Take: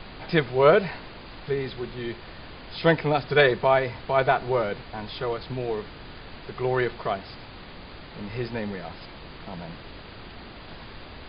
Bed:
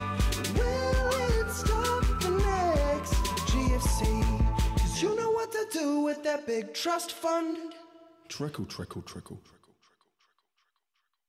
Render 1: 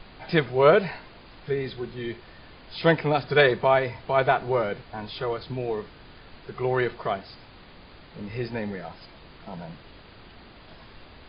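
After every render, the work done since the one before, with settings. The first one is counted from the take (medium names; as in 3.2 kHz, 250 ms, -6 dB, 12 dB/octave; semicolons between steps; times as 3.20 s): noise print and reduce 6 dB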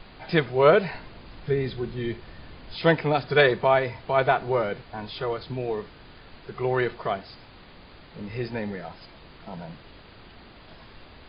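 0.94–2.76 s: bass shelf 260 Hz +7 dB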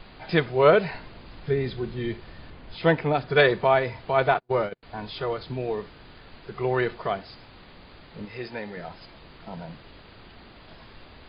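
2.50–3.36 s: distance through air 170 m; 4.34–4.83 s: gate -28 dBFS, range -40 dB; 8.25–8.77 s: bass shelf 270 Hz -12 dB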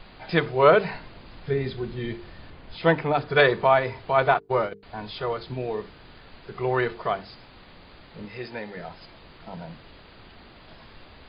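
hum notches 50/100/150/200/250/300/350/400/450 Hz; dynamic bell 1.1 kHz, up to +4 dB, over -35 dBFS, Q 1.8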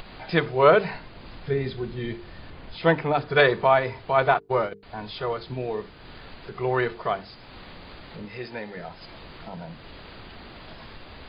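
upward compressor, threshold -35 dBFS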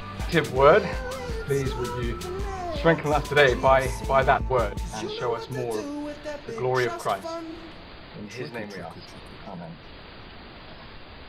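add bed -5.5 dB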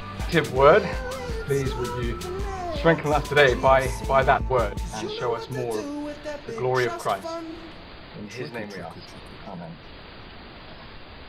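trim +1 dB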